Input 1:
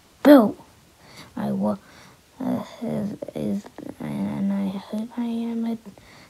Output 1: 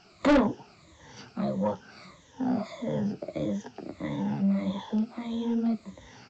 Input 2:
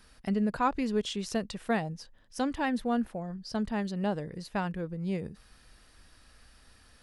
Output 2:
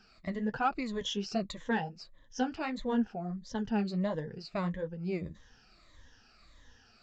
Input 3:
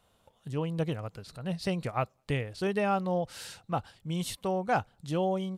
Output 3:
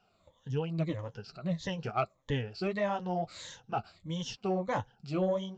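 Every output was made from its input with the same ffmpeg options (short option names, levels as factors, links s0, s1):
-af "afftfilt=real='re*pow(10,14/40*sin(2*PI*(1.1*log(max(b,1)*sr/1024/100)/log(2)-(-1.6)*(pts-256)/sr)))':imag='im*pow(10,14/40*sin(2*PI*(1.1*log(max(b,1)*sr/1024/100)/log(2)-(-1.6)*(pts-256)/sr)))':win_size=1024:overlap=0.75,flanger=delay=4.6:depth=8.5:regen=-33:speed=1.4:shape=triangular,aresample=16000,asoftclip=type=tanh:threshold=0.133,aresample=44100"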